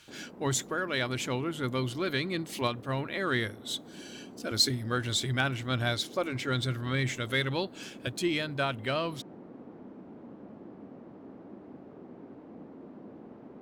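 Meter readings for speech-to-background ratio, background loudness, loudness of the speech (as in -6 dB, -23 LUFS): 17.5 dB, -48.5 LUFS, -31.0 LUFS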